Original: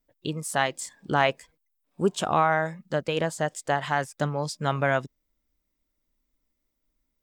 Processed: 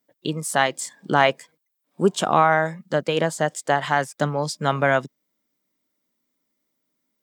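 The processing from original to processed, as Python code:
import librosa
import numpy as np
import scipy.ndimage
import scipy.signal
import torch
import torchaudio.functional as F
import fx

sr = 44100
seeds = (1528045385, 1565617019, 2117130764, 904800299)

y = scipy.signal.sosfilt(scipy.signal.butter(4, 140.0, 'highpass', fs=sr, output='sos'), x)
y = fx.notch(y, sr, hz=2600.0, q=20.0)
y = F.gain(torch.from_numpy(y), 5.0).numpy()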